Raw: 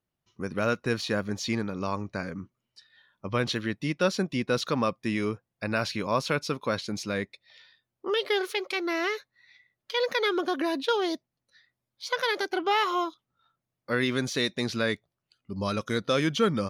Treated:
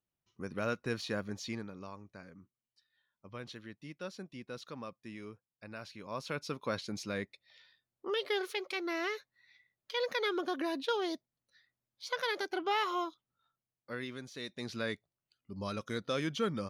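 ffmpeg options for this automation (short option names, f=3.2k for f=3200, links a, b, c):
-af "volume=13dB,afade=t=out:st=1.22:d=0.74:silence=0.316228,afade=t=in:st=5.98:d=0.7:silence=0.281838,afade=t=out:st=13.05:d=1.25:silence=0.251189,afade=t=in:st=14.3:d=0.54:silence=0.316228"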